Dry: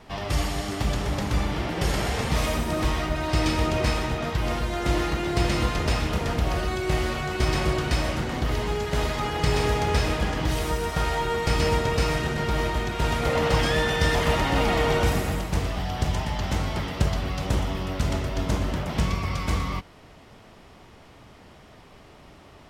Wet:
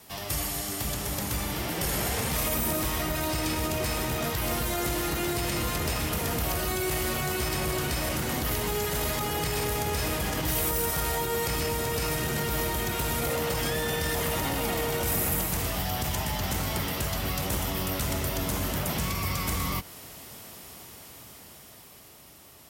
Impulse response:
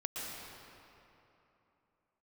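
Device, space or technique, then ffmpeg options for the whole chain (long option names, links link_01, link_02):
FM broadcast chain: -filter_complex "[0:a]highpass=59,dynaudnorm=framelen=310:gausssize=13:maxgain=8dB,acrossover=split=720|3000[link_01][link_02][link_03];[link_01]acompressor=threshold=-19dB:ratio=4[link_04];[link_02]acompressor=threshold=-28dB:ratio=4[link_05];[link_03]acompressor=threshold=-43dB:ratio=4[link_06];[link_04][link_05][link_06]amix=inputs=3:normalize=0,aemphasis=mode=production:type=50fm,alimiter=limit=-14.5dB:level=0:latency=1:release=13,asoftclip=type=hard:threshold=-17.5dB,lowpass=frequency=15000:width=0.5412,lowpass=frequency=15000:width=1.3066,aemphasis=mode=production:type=50fm,volume=-6dB"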